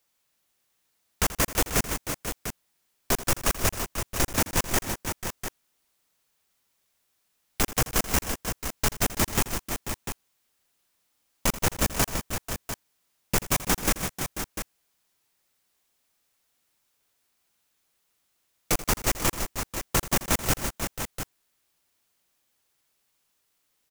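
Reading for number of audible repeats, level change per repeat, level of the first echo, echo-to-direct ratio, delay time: 5, no regular repeats, -15.5 dB, -5.5 dB, 83 ms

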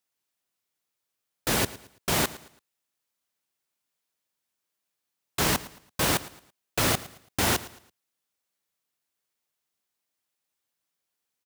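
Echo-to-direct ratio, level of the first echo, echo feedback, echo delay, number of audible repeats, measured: -17.5 dB, -18.0 dB, 34%, 111 ms, 2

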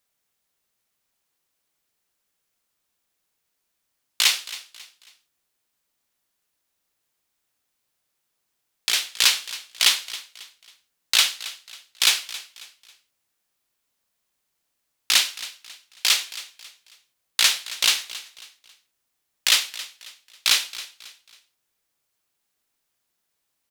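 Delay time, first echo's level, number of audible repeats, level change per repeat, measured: 272 ms, -16.5 dB, 3, -9.0 dB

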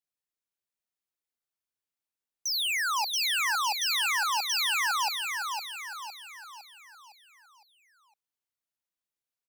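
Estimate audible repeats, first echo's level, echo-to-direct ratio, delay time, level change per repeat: 5, -5.0 dB, -4.0 dB, 509 ms, -6.5 dB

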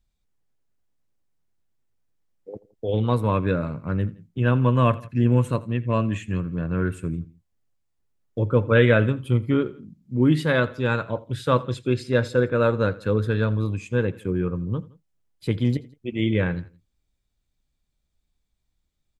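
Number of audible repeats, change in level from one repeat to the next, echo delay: 2, -5.0 dB, 84 ms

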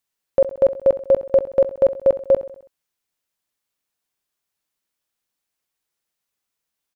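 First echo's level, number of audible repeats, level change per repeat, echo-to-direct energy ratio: -14.5 dB, 4, -5.5 dB, -13.0 dB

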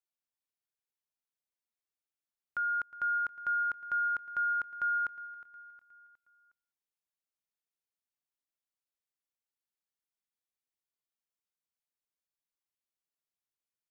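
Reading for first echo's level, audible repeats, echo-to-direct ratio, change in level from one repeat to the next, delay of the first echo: -17.5 dB, 3, -16.5 dB, -6.5 dB, 362 ms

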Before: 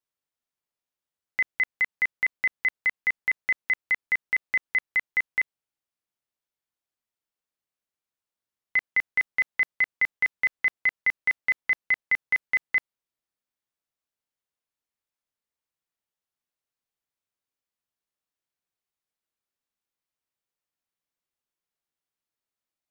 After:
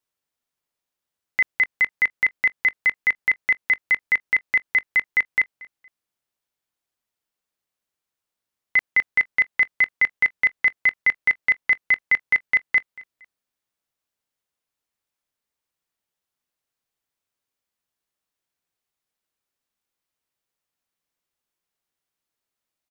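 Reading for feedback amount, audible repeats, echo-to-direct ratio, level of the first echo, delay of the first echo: 30%, 2, -21.5 dB, -22.0 dB, 232 ms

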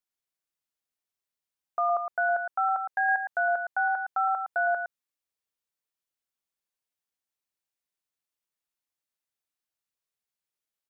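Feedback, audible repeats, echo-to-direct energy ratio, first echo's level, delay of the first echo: no regular repeats, 1, -7.0 dB, -7.0 dB, 112 ms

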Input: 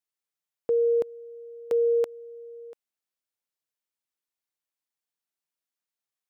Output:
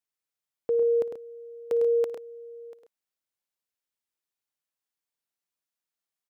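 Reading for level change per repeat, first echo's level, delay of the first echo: no regular repeats, -19.5 dB, 56 ms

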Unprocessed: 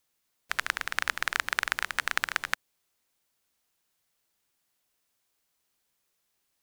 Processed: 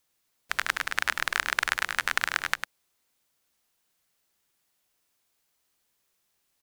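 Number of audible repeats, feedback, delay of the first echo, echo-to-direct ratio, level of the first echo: 1, no regular repeats, 101 ms, -7.0 dB, -7.0 dB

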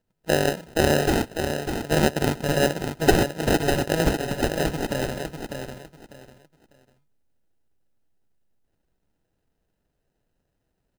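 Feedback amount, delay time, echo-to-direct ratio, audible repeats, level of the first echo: 24%, 598 ms, -6.0 dB, 3, -6.5 dB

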